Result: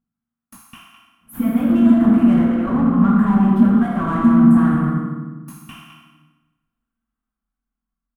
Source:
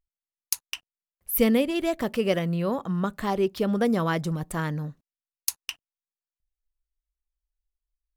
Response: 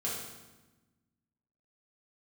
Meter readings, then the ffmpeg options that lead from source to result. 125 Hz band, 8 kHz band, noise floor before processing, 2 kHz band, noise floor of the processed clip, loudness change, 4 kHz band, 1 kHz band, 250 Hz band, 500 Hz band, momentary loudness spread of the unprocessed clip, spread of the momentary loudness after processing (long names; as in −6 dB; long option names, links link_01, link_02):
+9.5 dB, below −10 dB, below −85 dBFS, +1.5 dB, −85 dBFS, +11.5 dB, can't be measured, +7.5 dB, +14.5 dB, −3.0 dB, 15 LU, 11 LU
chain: -filter_complex "[0:a]alimiter=limit=-12.5dB:level=0:latency=1:release=446[link_01];[1:a]atrim=start_sample=2205[link_02];[link_01][link_02]afir=irnorm=-1:irlink=0,dynaudnorm=framelen=420:gausssize=9:maxgain=11.5dB,equalizer=frequency=7500:width=0.49:gain=-4.5,afftfilt=real='re*lt(hypot(re,im),1)':imag='im*lt(hypot(re,im),1)':win_size=1024:overlap=0.75,asplit=2[link_03][link_04];[link_04]adelay=209.9,volume=-11dB,highshelf=frequency=4000:gain=-4.72[link_05];[link_03][link_05]amix=inputs=2:normalize=0,asplit=2[link_06][link_07];[link_07]highpass=frequency=720:poles=1,volume=24dB,asoftclip=type=tanh:threshold=-7.5dB[link_08];[link_06][link_08]amix=inputs=2:normalize=0,lowpass=frequency=3000:poles=1,volume=-6dB,firequalizer=gain_entry='entry(100,0);entry(230,13);entry(430,-19);entry(820,-10);entry(1300,-7);entry(2100,-19);entry(3100,-21);entry(4700,-30);entry(8600,-14)':delay=0.05:min_phase=1"